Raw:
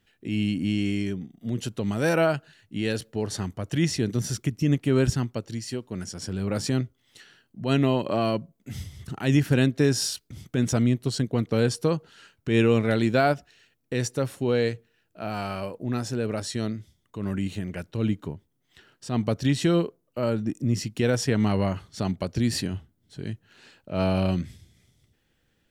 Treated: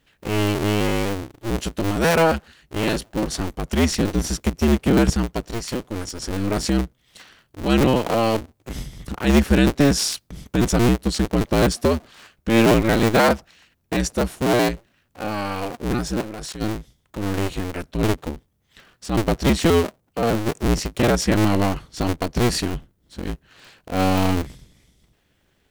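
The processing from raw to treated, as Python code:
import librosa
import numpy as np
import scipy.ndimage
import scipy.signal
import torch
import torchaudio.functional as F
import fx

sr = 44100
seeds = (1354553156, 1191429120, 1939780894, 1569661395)

y = fx.cycle_switch(x, sr, every=2, mode='inverted')
y = fx.level_steps(y, sr, step_db=19, at=(16.2, 16.6), fade=0.02)
y = y * 10.0 ** (5.0 / 20.0)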